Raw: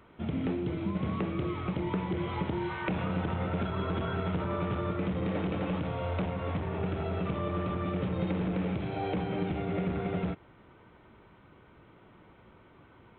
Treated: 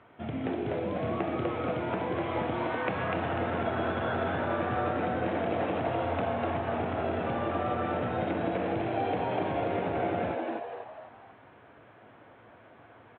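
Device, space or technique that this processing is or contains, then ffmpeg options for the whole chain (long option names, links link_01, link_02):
frequency-shifting delay pedal into a guitar cabinet: -filter_complex "[0:a]asplit=6[link_01][link_02][link_03][link_04][link_05][link_06];[link_02]adelay=247,afreqshift=150,volume=-3dB[link_07];[link_03]adelay=494,afreqshift=300,volume=-11.2dB[link_08];[link_04]adelay=741,afreqshift=450,volume=-19.4dB[link_09];[link_05]adelay=988,afreqshift=600,volume=-27.5dB[link_10];[link_06]adelay=1235,afreqshift=750,volume=-35.7dB[link_11];[link_01][link_07][link_08][link_09][link_10][link_11]amix=inputs=6:normalize=0,highpass=110,equalizer=frequency=110:width_type=q:width=4:gain=4,equalizer=frequency=180:width_type=q:width=4:gain=-9,equalizer=frequency=360:width_type=q:width=4:gain=-3,equalizer=frequency=700:width_type=q:width=4:gain=8,equalizer=frequency=1700:width_type=q:width=4:gain=4,lowpass=frequency=3600:width=0.5412,lowpass=frequency=3600:width=1.3066"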